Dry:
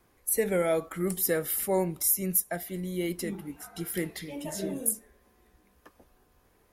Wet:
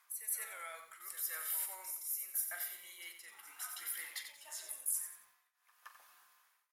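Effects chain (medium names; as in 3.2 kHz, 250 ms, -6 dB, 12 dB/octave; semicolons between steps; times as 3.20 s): doubling 43 ms -12 dB; on a send: reverse echo 171 ms -11.5 dB; on the sum: saturation -15.5 dBFS, distortion -23 dB; tremolo triangle 0.86 Hz, depth 95%; reverse; compression 6:1, threshold -42 dBFS, peak gain reduction 17 dB; reverse; Chebyshev high-pass 1.1 kHz, order 3; bit-crushed delay 90 ms, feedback 35%, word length 12-bit, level -8 dB; trim +7 dB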